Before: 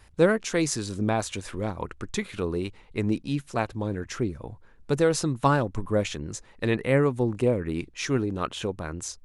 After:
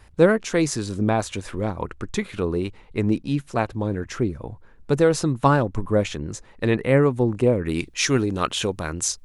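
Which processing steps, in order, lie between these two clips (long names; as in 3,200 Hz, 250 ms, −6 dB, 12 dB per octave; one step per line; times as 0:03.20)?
high-shelf EQ 2,200 Hz −4.5 dB, from 0:07.65 +7.5 dB
level +4.5 dB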